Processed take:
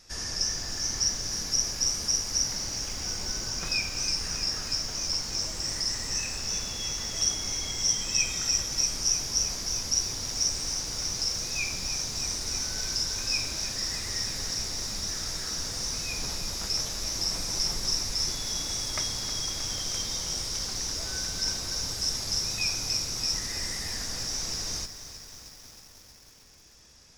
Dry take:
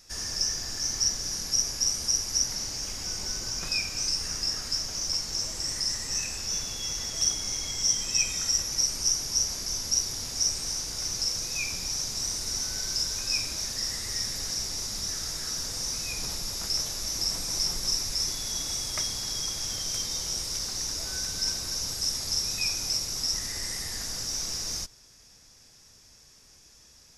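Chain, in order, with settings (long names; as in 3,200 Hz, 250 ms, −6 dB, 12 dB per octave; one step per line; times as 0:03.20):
high-shelf EQ 8,300 Hz −10 dB
feedback echo at a low word length 314 ms, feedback 80%, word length 8 bits, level −12 dB
level +2 dB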